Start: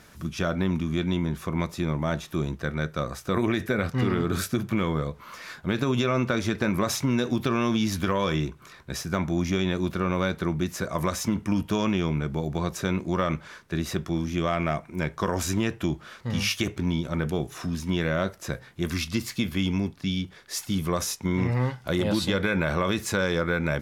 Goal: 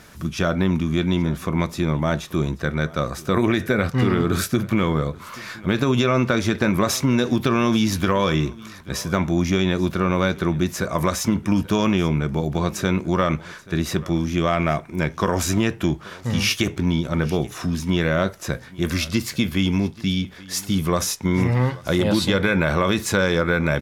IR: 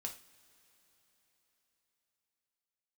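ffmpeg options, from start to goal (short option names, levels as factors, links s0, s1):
-af "aecho=1:1:833:0.0841,volume=1.88"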